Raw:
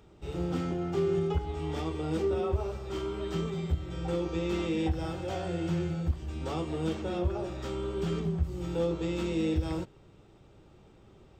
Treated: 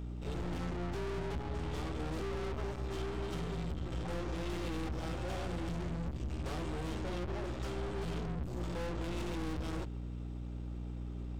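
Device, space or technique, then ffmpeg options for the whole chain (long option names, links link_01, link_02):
valve amplifier with mains hum: -af "aeval=exprs='(tanh(158*val(0)+0.55)-tanh(0.55))/158':channel_layout=same,aeval=exprs='val(0)+0.00562*(sin(2*PI*60*n/s)+sin(2*PI*2*60*n/s)/2+sin(2*PI*3*60*n/s)/3+sin(2*PI*4*60*n/s)/4+sin(2*PI*5*60*n/s)/5)':channel_layout=same,volume=5dB"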